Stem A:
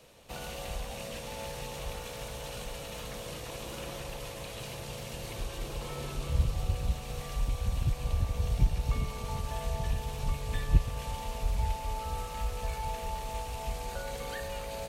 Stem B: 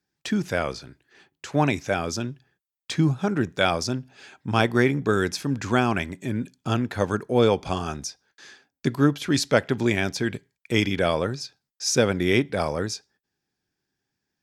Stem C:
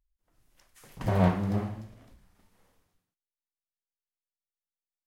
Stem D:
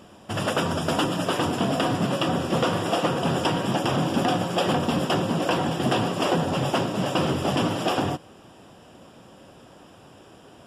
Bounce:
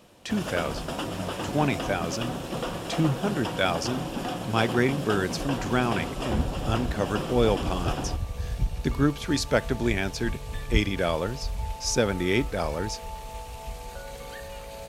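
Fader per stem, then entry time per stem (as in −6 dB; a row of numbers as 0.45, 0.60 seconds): −1.5, −3.5, −12.5, −9.0 decibels; 0.00, 0.00, 0.00, 0.00 seconds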